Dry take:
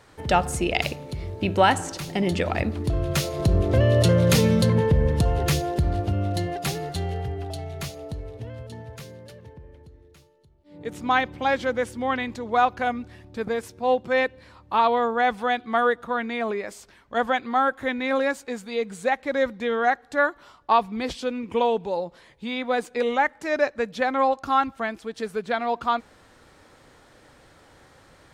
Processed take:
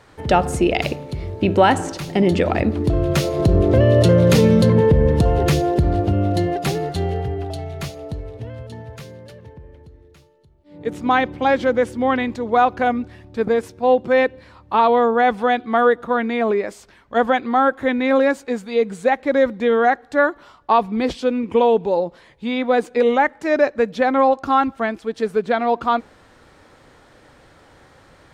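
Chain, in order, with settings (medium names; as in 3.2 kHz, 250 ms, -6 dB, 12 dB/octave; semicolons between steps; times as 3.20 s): dynamic bell 340 Hz, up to +6 dB, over -36 dBFS, Q 0.71; in parallel at -2 dB: peak limiter -12.5 dBFS, peak gain reduction 9.5 dB; on the sum: treble shelf 5.2 kHz -6 dB; trim -1 dB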